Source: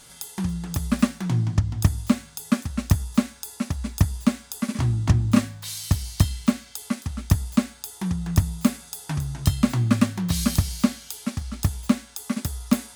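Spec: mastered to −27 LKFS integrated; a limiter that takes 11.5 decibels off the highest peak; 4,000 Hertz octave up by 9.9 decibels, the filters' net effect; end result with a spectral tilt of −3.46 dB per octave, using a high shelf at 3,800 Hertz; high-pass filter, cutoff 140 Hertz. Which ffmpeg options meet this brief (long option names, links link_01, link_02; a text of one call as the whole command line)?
ffmpeg -i in.wav -af "highpass=140,highshelf=frequency=3800:gain=6.5,equalizer=frequency=4000:width_type=o:gain=8,volume=1.5dB,alimiter=limit=-13dB:level=0:latency=1" out.wav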